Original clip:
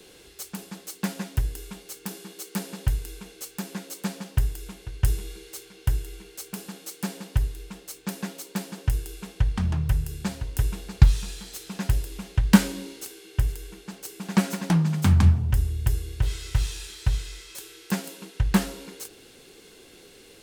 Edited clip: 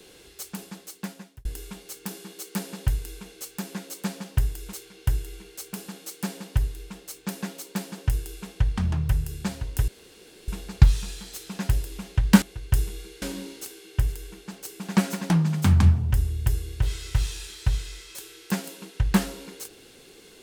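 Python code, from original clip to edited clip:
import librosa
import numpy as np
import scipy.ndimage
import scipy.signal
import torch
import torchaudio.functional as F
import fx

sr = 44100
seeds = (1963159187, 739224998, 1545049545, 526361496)

y = fx.edit(x, sr, fx.fade_out_span(start_s=0.63, length_s=0.82),
    fx.move(start_s=4.73, length_s=0.8, to_s=12.62),
    fx.insert_room_tone(at_s=10.68, length_s=0.6), tone=tone)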